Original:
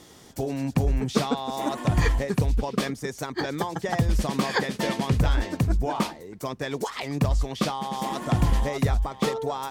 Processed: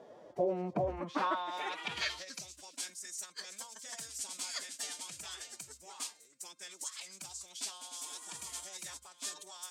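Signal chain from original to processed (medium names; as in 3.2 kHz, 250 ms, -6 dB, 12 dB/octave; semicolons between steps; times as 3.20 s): crackle 13 per s -35 dBFS; in parallel at -9 dB: overload inside the chain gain 22.5 dB; on the sum: de-hum 396.2 Hz, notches 10; formant-preserving pitch shift +5 st; band-pass sweep 600 Hz -> 7.9 kHz, 0.74–2.59 s; trim +2 dB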